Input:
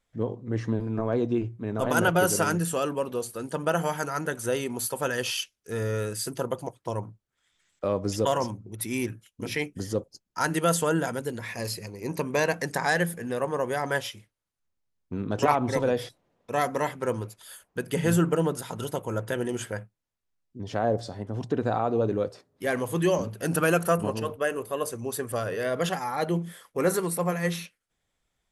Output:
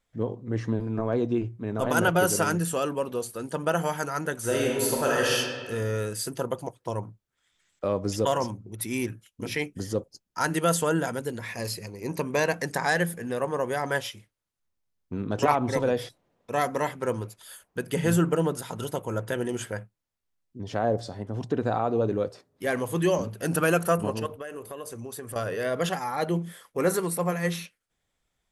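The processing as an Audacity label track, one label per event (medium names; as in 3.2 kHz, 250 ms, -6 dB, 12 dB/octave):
4.390000	5.340000	reverb throw, RT60 1.6 s, DRR -3.5 dB
24.260000	25.360000	compression, threshold -34 dBFS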